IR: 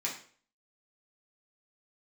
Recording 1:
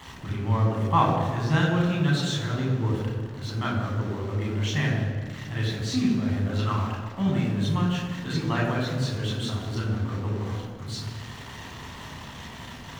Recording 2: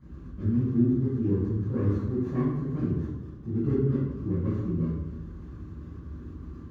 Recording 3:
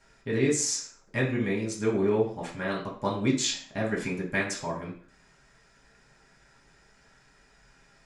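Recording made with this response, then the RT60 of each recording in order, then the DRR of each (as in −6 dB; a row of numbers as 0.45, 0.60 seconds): 3; 1.7, 1.1, 0.45 seconds; −3.0, −14.0, −5.0 decibels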